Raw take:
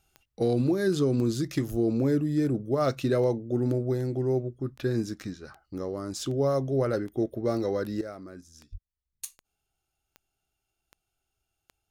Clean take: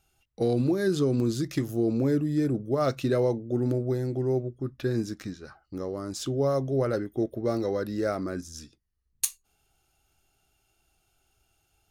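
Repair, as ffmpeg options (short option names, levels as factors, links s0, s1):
-filter_complex "[0:a]adeclick=t=4,asplit=3[s0][s1][s2];[s0]afade=t=out:st=1.7:d=0.02[s3];[s1]highpass=f=140:w=0.5412,highpass=f=140:w=1.3066,afade=t=in:st=1.7:d=0.02,afade=t=out:st=1.82:d=0.02[s4];[s2]afade=t=in:st=1.82:d=0.02[s5];[s3][s4][s5]amix=inputs=3:normalize=0,asplit=3[s6][s7][s8];[s6]afade=t=out:st=8.71:d=0.02[s9];[s7]highpass=f=140:w=0.5412,highpass=f=140:w=1.3066,afade=t=in:st=8.71:d=0.02,afade=t=out:st=8.83:d=0.02[s10];[s8]afade=t=in:st=8.83:d=0.02[s11];[s9][s10][s11]amix=inputs=3:normalize=0,asetnsamples=n=441:p=0,asendcmd='8.01 volume volume 11.5dB',volume=1"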